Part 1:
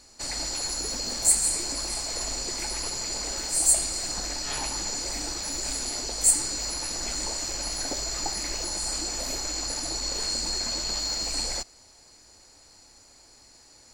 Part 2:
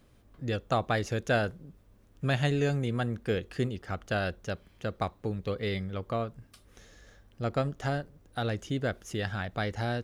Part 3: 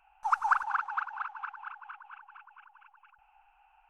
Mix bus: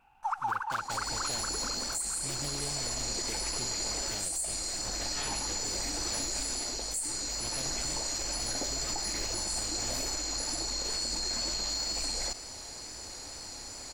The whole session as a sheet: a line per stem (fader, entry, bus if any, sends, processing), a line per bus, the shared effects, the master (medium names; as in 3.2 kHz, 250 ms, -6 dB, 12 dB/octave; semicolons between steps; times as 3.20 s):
-17.5 dB, 0.70 s, no send, level rider gain up to 13 dB; level flattener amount 50%
-14.5 dB, 0.00 s, no send, delay time shaken by noise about 2.9 kHz, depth 0.17 ms
0.0 dB, 0.00 s, no send, none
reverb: none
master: wow and flutter 24 cents; peak limiter -23.5 dBFS, peak gain reduction 10 dB